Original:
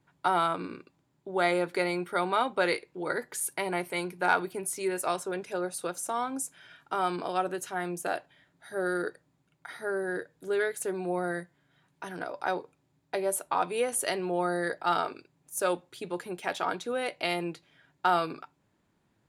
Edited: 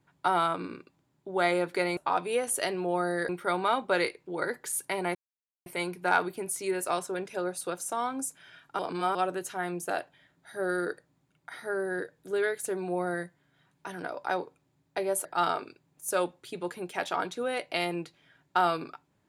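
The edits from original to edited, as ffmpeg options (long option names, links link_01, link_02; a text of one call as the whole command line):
ffmpeg -i in.wav -filter_complex "[0:a]asplit=7[link_01][link_02][link_03][link_04][link_05][link_06][link_07];[link_01]atrim=end=1.972[link_08];[link_02]atrim=start=13.418:end=14.742[link_09];[link_03]atrim=start=1.968:end=3.83,asetpts=PTS-STARTPTS,afade=type=out:start_time=1.858:duration=0.004:curve=hsin,apad=pad_dur=0.51[link_10];[link_04]atrim=start=3.83:end=6.962,asetpts=PTS-STARTPTS,afade=type=in:duration=0.004:curve=hsin[link_11];[link_05]atrim=start=6.958:end=7.322,asetpts=PTS-STARTPTS,areverse[link_12];[link_06]atrim=start=7.318:end=13.422[link_13];[link_07]atrim=start=14.738[link_14];[link_08][link_09]acrossfade=duration=0.004:curve1=hsin:curve2=hsin[link_15];[link_10][link_11]concat=n=2:v=0:a=1[link_16];[link_15][link_16]acrossfade=duration=0.004:curve1=hsin:curve2=hsin[link_17];[link_17][link_12]acrossfade=duration=0.004:curve1=hsin:curve2=hsin[link_18];[link_18][link_13]acrossfade=duration=0.004:curve1=hsin:curve2=hsin[link_19];[link_19][link_14]acrossfade=duration=0.004:curve1=hsin:curve2=hsin" out.wav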